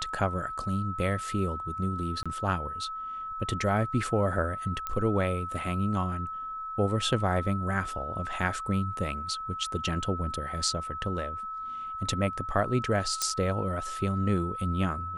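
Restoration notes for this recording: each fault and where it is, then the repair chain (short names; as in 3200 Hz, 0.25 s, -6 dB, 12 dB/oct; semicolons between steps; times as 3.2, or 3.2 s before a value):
tone 1300 Hz -34 dBFS
2.23–2.26 gap 26 ms
4.87 pop -18 dBFS
13.22 pop -12 dBFS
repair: de-click; notch 1300 Hz, Q 30; interpolate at 2.23, 26 ms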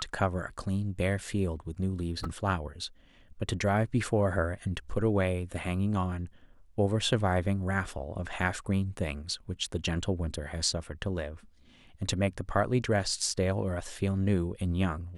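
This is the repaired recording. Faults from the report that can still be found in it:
none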